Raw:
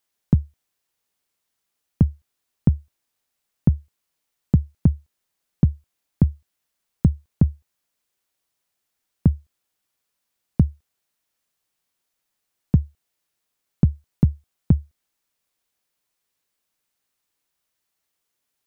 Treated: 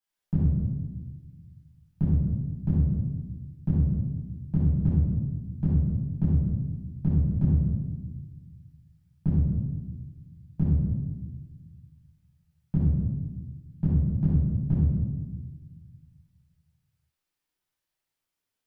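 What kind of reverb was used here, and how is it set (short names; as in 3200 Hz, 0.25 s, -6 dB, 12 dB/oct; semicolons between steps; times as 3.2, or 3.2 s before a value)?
shoebox room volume 880 m³, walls mixed, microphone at 8.3 m; gain -19.5 dB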